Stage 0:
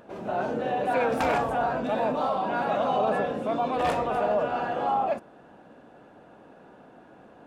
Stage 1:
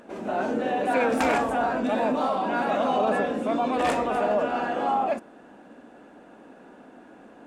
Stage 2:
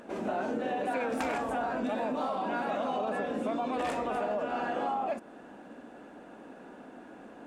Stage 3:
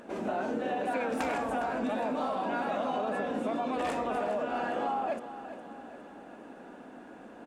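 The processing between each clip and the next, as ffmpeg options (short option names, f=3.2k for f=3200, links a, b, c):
-af "equalizer=f=125:t=o:w=1:g=-10,equalizer=f=250:t=o:w=1:g=8,equalizer=f=2k:t=o:w=1:g=4,equalizer=f=8k:t=o:w=1:g=8"
-af "acompressor=threshold=-29dB:ratio=6"
-af "aecho=1:1:409|818|1227|1636|2045:0.224|0.119|0.0629|0.0333|0.0177"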